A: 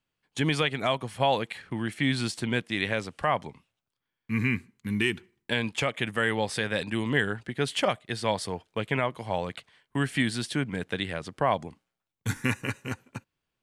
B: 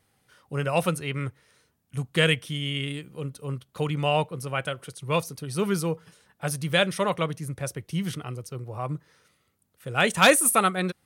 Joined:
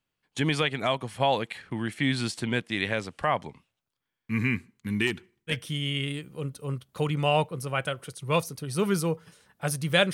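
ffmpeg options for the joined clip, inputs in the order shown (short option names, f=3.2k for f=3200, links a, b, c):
-filter_complex "[0:a]asettb=1/sr,asplit=3[a][b][c];[a]atrim=end=5.074[d];[b]atrim=start=5.07:end=5.57,asetpts=PTS-STARTPTS,afade=t=in:d=0.004:c=qsin,afade=t=out:st=0.496:d=0.004:c=qsin,volume=21.5dB,asoftclip=hard,volume=-21.5dB[e];[c]atrim=start=5.566[f];[d][e]acrossfade=d=0.004:c1=hsin:c2=qsin[g];[g][f]acrossfade=d=0.004:c1=qsin:c2=hsin,apad=whole_dur=10.13,atrim=end=10.13,atrim=end=5.57,asetpts=PTS-STARTPTS[h];[1:a]atrim=start=2.27:end=6.93,asetpts=PTS-STARTPTS[i];[h][i]acrossfade=d=0.1:c1=tri:c2=tri"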